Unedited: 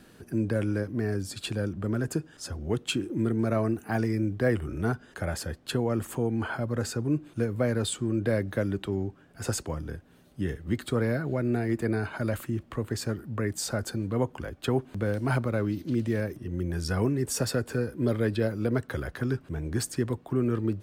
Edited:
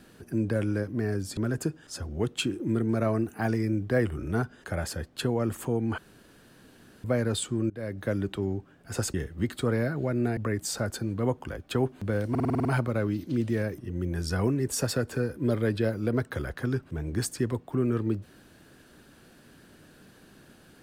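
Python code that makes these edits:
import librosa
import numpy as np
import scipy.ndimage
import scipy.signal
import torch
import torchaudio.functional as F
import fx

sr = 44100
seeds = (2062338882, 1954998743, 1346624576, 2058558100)

y = fx.edit(x, sr, fx.cut(start_s=1.37, length_s=0.5),
    fx.room_tone_fill(start_s=6.48, length_s=1.06),
    fx.fade_in_from(start_s=8.2, length_s=0.45, floor_db=-22.0),
    fx.cut(start_s=9.64, length_s=0.79),
    fx.cut(start_s=11.66, length_s=1.64),
    fx.stutter(start_s=15.23, slice_s=0.05, count=8), tone=tone)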